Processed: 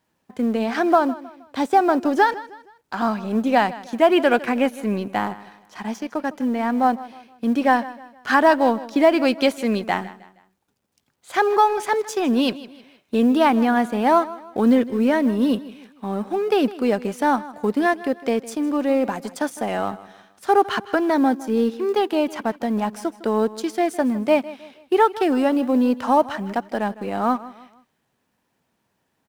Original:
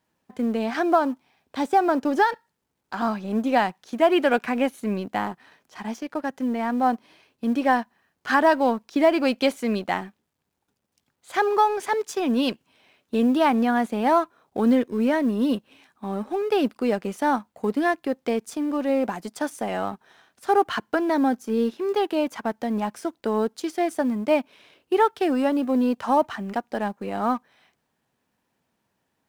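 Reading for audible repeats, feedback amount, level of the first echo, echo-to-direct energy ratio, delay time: 3, 38%, −17.5 dB, −17.0 dB, 157 ms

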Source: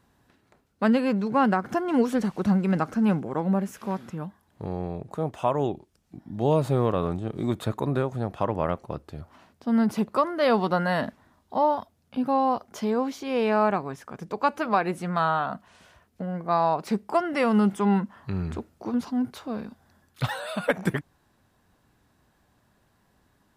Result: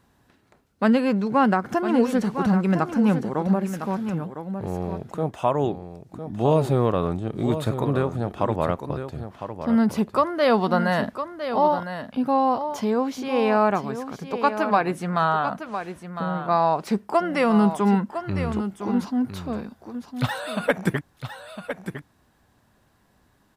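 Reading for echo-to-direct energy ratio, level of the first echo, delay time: −9.5 dB, −9.5 dB, 1,007 ms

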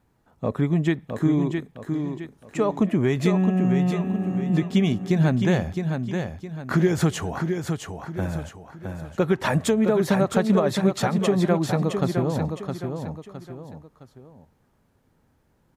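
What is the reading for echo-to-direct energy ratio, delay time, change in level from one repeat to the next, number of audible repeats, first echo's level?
−5.5 dB, 663 ms, −8.5 dB, 3, −6.0 dB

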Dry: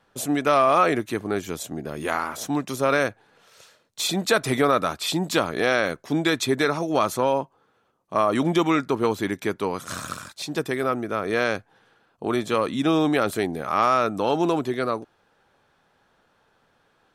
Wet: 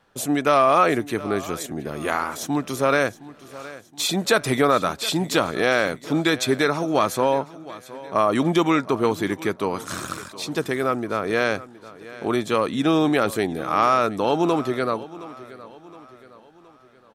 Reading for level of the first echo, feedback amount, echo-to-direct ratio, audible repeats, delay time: −18.0 dB, 46%, −17.0 dB, 3, 718 ms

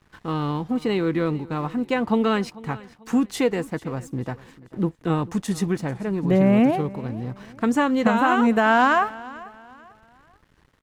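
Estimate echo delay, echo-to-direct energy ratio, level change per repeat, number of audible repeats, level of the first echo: 443 ms, −19.5 dB, −9.5 dB, 2, −20.0 dB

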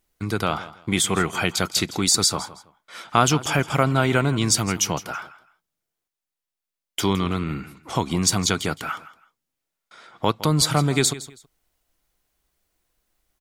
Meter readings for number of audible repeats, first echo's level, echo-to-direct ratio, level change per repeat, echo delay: 2, −16.5 dB, −16.0 dB, −12.5 dB, 163 ms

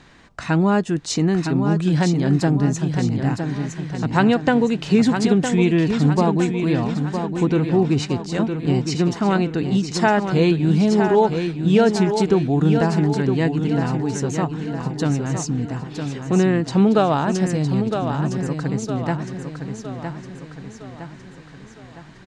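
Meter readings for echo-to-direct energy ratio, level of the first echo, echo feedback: −6.0 dB, −7.0 dB, 49%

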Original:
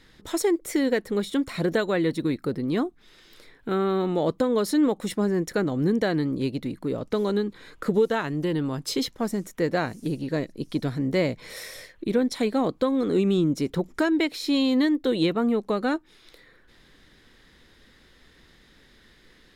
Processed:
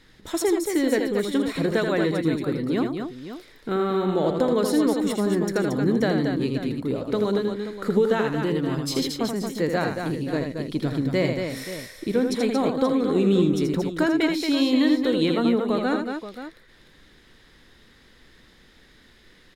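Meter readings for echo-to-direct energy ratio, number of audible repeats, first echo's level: −2.5 dB, 3, −6.0 dB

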